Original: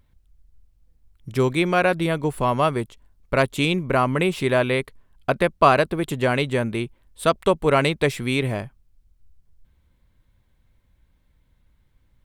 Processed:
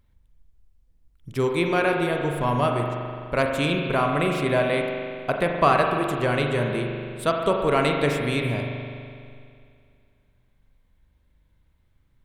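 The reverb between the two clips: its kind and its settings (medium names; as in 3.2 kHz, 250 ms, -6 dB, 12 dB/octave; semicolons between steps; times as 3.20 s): spring tank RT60 2.3 s, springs 41 ms, chirp 35 ms, DRR 1.5 dB; trim -4 dB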